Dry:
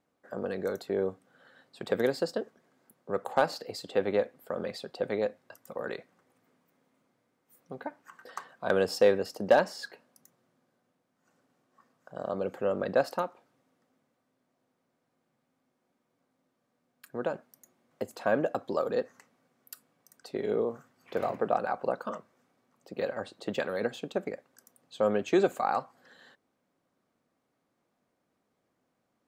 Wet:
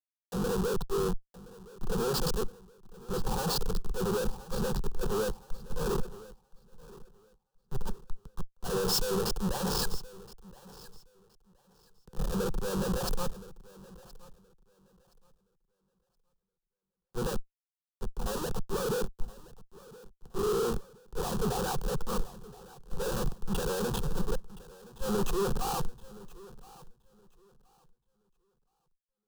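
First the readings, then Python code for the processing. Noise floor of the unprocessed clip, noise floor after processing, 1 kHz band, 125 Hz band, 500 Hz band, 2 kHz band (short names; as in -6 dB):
-79 dBFS, under -85 dBFS, -3.5 dB, +9.0 dB, -4.5 dB, -6.0 dB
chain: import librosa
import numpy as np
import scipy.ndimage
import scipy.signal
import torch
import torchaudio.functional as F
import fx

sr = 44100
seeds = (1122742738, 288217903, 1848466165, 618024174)

y = fx.env_lowpass(x, sr, base_hz=720.0, full_db=-27.0)
y = fx.schmitt(y, sr, flips_db=-41.0)
y = fx.low_shelf(y, sr, hz=110.0, db=11.0)
y = np.clip(y, -10.0 ** (-29.0 / 20.0), 10.0 ** (-29.0 / 20.0))
y = fx.fixed_phaser(y, sr, hz=420.0, stages=8)
y = fx.echo_feedback(y, sr, ms=1021, feedback_pct=41, wet_db=-12.0)
y = fx.band_widen(y, sr, depth_pct=70)
y = y * 10.0 ** (4.5 / 20.0)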